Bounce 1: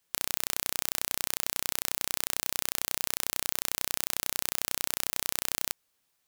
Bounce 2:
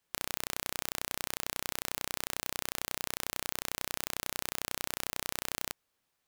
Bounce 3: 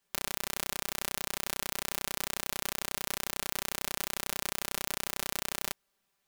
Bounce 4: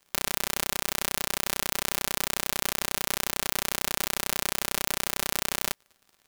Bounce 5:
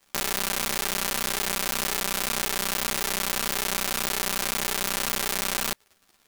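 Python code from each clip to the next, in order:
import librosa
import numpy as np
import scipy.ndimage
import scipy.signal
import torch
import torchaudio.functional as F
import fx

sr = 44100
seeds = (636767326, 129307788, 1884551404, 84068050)

y1 = fx.high_shelf(x, sr, hz=3400.0, db=-7.5)
y2 = y1 + 0.72 * np.pad(y1, (int(5.1 * sr / 1000.0), 0))[:len(y1)]
y3 = fx.dmg_crackle(y2, sr, seeds[0], per_s=84.0, level_db=-49.0)
y3 = y3 * librosa.db_to_amplitude(6.0)
y4 = fx.ensemble(y3, sr)
y4 = y4 * librosa.db_to_amplitude(6.0)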